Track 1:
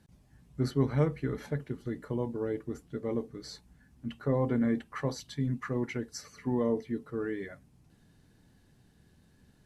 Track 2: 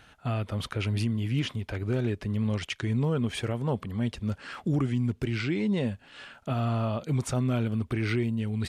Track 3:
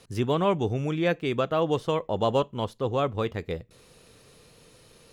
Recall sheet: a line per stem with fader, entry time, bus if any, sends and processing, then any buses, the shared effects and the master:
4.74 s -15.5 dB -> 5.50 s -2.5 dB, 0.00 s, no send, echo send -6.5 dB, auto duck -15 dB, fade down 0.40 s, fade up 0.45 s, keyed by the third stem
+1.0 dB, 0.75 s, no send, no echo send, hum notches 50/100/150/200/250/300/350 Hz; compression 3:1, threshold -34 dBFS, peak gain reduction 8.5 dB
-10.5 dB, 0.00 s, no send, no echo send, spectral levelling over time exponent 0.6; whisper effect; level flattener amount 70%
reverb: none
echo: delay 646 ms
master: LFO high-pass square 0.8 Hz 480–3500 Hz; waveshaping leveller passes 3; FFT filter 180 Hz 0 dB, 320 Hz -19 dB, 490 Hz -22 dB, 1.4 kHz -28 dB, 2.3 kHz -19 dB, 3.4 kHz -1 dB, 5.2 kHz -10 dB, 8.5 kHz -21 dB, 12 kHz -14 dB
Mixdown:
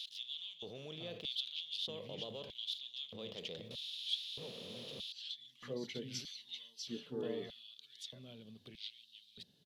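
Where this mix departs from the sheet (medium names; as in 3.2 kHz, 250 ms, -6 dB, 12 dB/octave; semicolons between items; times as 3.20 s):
stem 1 -15.5 dB -> -4.0 dB; stem 3: missing whisper effect; master: missing waveshaping leveller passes 3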